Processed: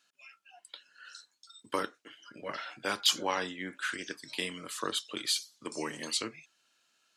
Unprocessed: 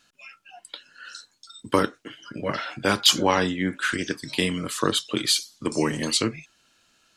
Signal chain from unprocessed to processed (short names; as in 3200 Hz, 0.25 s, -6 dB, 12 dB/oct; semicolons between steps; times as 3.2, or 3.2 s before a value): HPF 550 Hz 6 dB/oct; gain -8.5 dB